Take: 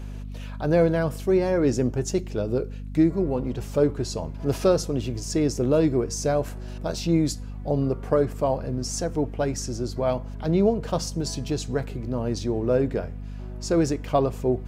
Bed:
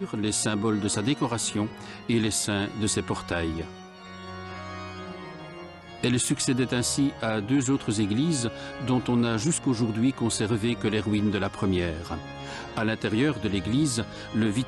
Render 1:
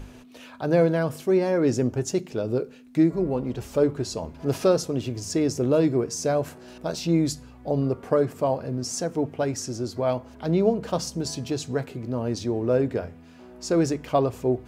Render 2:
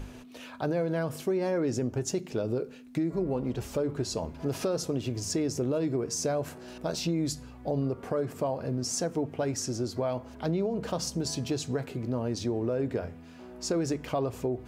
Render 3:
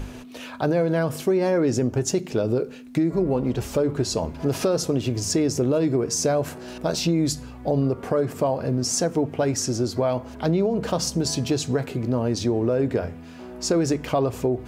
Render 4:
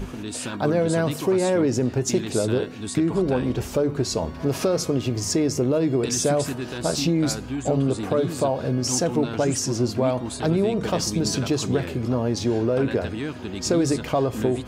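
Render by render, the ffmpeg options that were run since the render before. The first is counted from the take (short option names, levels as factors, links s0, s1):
-af "bandreject=f=50:t=h:w=6,bandreject=f=100:t=h:w=6,bandreject=f=150:t=h:w=6,bandreject=f=200:t=h:w=6"
-af "alimiter=limit=0.15:level=0:latency=1:release=81,acompressor=threshold=0.0447:ratio=2.5"
-af "volume=2.37"
-filter_complex "[1:a]volume=0.501[s0];[0:a][s0]amix=inputs=2:normalize=0"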